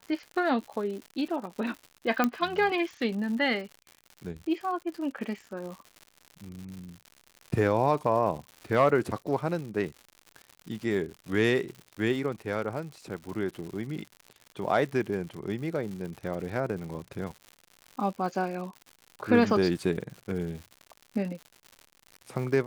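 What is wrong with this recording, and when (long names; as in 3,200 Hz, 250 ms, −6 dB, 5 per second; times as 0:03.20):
surface crackle 140 per second −37 dBFS
0:02.24: click −11 dBFS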